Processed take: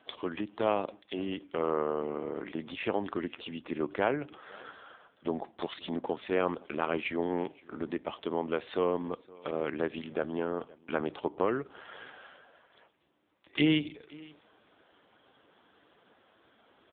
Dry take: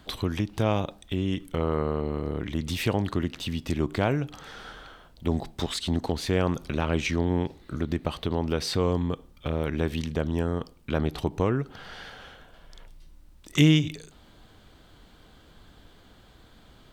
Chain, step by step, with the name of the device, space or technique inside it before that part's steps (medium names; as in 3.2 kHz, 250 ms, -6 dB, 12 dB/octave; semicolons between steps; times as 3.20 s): satellite phone (band-pass 350–3200 Hz; delay 520 ms -23 dB; AMR-NB 5.9 kbps 8 kHz)